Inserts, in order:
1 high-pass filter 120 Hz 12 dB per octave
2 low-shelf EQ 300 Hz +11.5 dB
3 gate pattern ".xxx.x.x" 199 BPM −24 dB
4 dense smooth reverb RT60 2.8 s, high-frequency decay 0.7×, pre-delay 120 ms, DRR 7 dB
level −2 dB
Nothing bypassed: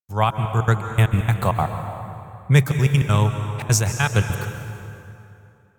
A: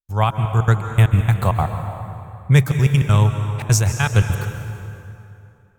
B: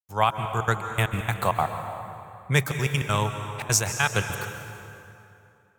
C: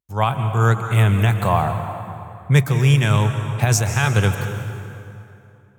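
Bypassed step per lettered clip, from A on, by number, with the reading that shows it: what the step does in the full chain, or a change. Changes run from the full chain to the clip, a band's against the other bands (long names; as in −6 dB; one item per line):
1, 125 Hz band +3.5 dB
2, 125 Hz band −9.0 dB
3, 8 kHz band −2.0 dB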